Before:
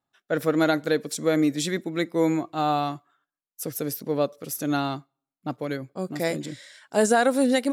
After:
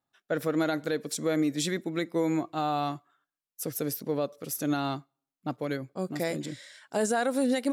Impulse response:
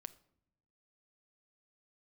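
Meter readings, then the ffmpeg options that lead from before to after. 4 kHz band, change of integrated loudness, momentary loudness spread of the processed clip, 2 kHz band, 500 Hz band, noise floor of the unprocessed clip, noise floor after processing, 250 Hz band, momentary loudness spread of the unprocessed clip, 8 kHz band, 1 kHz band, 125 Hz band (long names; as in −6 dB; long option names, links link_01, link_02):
−4.5 dB, −5.0 dB, 10 LU, −6.0 dB, −5.5 dB, below −85 dBFS, below −85 dBFS, −4.5 dB, 13 LU, −3.5 dB, −5.5 dB, −3.5 dB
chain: -af "alimiter=limit=-16dB:level=0:latency=1:release=133,volume=-2dB"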